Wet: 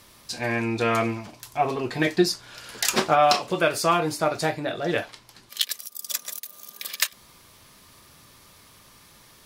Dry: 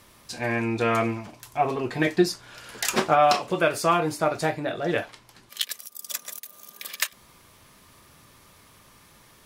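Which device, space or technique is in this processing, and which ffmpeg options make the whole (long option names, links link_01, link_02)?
presence and air boost: -af "equalizer=frequency=4500:width_type=o:width=1:gain=4.5,highshelf=frequency=9400:gain=4"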